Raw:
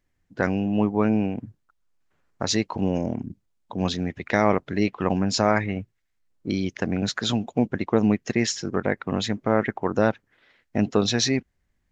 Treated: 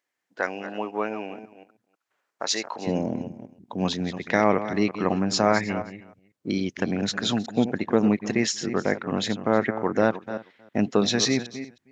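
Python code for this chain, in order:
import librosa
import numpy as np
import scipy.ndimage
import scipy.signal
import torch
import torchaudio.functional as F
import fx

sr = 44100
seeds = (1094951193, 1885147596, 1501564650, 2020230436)

y = fx.reverse_delay(x, sr, ms=182, wet_db=-11.5)
y = fx.highpass(y, sr, hz=fx.steps((0.0, 540.0), (2.87, 140.0)), slope=12)
y = y + 10.0 ** (-21.0 / 20.0) * np.pad(y, (int(315 * sr / 1000.0), 0))[:len(y)]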